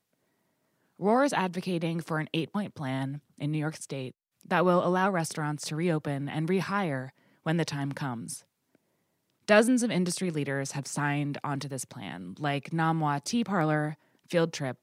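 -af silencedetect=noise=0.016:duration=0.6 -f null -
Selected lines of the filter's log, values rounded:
silence_start: 0.00
silence_end: 1.01 | silence_duration: 1.01
silence_start: 8.36
silence_end: 9.48 | silence_duration: 1.12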